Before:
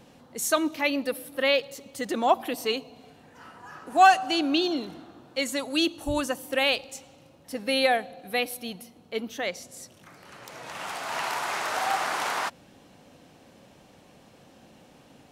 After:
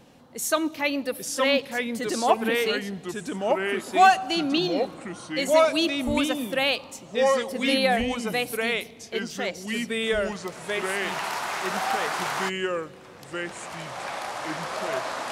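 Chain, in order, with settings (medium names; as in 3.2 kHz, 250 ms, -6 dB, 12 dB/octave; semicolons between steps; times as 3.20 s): ever faster or slower copies 771 ms, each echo -3 st, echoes 2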